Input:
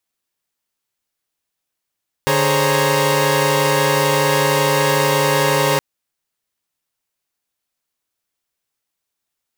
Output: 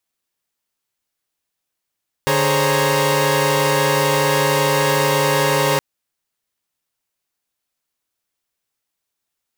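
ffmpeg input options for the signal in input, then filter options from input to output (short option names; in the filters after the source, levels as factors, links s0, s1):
-f lavfi -i "aevalsrc='0.126*((2*mod(146.83*t,1)-1)+(2*mod(415.3*t,1)-1)+(2*mod(523.25*t,1)-1)+(2*mod(554.37*t,1)-1)+(2*mod(932.33*t,1)-1))':d=3.52:s=44100"
-af "asoftclip=type=tanh:threshold=0.473"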